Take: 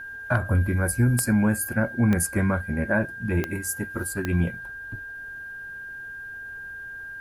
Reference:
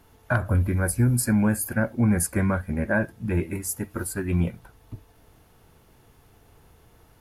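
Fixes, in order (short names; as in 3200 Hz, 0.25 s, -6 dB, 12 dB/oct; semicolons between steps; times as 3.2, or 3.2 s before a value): de-click; notch 1600 Hz, Q 30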